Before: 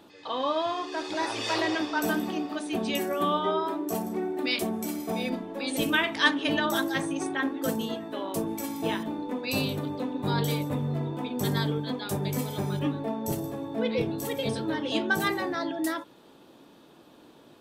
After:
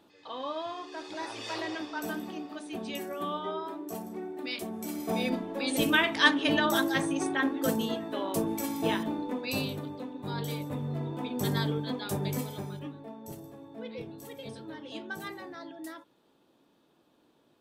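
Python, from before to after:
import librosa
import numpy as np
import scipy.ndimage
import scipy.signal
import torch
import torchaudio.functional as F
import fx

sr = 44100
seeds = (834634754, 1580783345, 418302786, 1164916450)

y = fx.gain(x, sr, db=fx.line((4.68, -8.0), (5.14, 0.5), (9.11, 0.5), (10.18, -9.0), (11.28, -2.0), (12.32, -2.0), (12.9, -13.0)))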